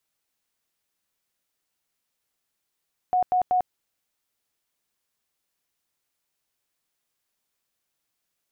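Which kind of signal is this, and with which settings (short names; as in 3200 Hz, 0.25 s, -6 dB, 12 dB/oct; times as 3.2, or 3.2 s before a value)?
tone bursts 731 Hz, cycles 71, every 0.19 s, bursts 3, -18 dBFS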